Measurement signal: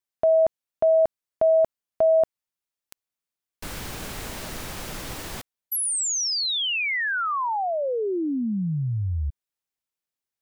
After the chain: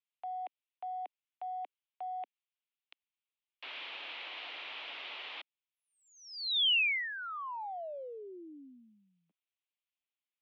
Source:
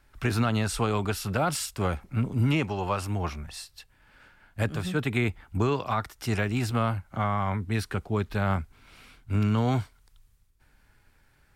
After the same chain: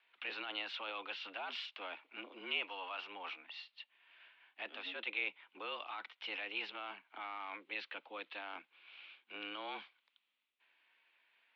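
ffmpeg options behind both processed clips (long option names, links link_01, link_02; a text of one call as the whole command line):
ffmpeg -i in.wav -filter_complex "[0:a]acrossover=split=540 2600:gain=0.158 1 0.224[link_01][link_02][link_03];[link_01][link_02][link_03]amix=inputs=3:normalize=0,areverse,acompressor=threshold=-30dB:ratio=6:attack=0.23:release=53:knee=6:detection=rms,areverse,highpass=frequency=180:width_type=q:width=0.5412,highpass=frequency=180:width_type=q:width=1.307,lowpass=frequency=3400:width_type=q:width=0.5176,lowpass=frequency=3400:width_type=q:width=0.7071,lowpass=frequency=3400:width_type=q:width=1.932,afreqshift=94,aexciter=amount=8.3:drive=3.5:freq=2400,volume=-8dB" out.wav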